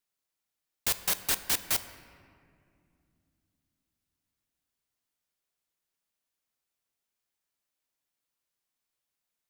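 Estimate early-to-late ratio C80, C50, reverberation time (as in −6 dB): 13.5 dB, 12.5 dB, 2.4 s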